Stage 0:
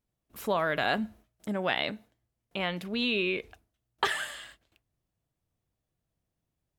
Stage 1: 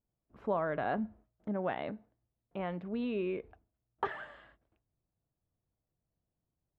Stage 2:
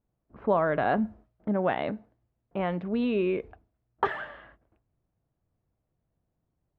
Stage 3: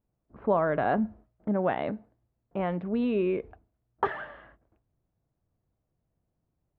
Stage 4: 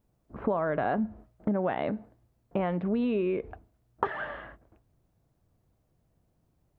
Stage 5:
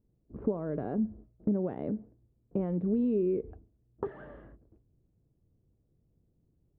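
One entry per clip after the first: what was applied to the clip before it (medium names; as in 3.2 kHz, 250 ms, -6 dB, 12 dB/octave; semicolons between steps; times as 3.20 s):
low-pass 1.1 kHz 12 dB/octave; trim -3 dB
level-controlled noise filter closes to 1.8 kHz, open at -30.5 dBFS; trim +8 dB
treble shelf 2.8 kHz -8.5 dB
compression 5:1, threshold -34 dBFS, peak gain reduction 13 dB; trim +8 dB
FFT filter 430 Hz 0 dB, 680 Hz -13 dB, 2.7 kHz -22 dB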